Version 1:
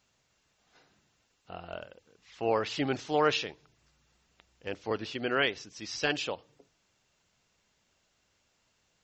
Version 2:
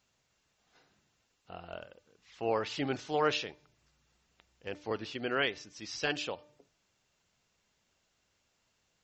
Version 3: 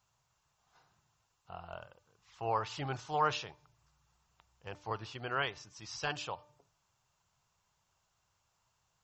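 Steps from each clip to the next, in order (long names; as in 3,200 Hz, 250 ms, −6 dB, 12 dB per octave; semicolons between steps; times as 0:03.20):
hum removal 297.4 Hz, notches 8; level −3 dB
octave-band graphic EQ 125/250/500/1,000/2,000/4,000 Hz +6/−12/−6/+8/−7/−4 dB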